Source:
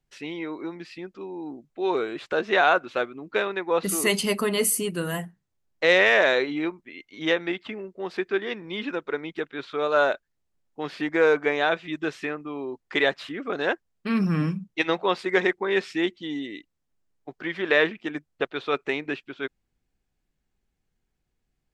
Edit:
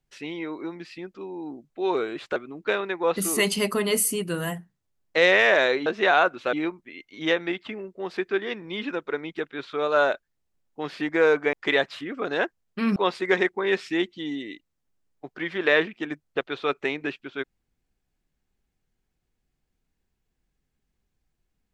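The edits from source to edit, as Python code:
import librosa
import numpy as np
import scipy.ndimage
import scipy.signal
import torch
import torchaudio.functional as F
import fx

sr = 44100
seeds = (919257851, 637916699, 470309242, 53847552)

y = fx.edit(x, sr, fx.move(start_s=2.36, length_s=0.67, to_s=6.53),
    fx.cut(start_s=11.53, length_s=1.28),
    fx.cut(start_s=14.24, length_s=0.76), tone=tone)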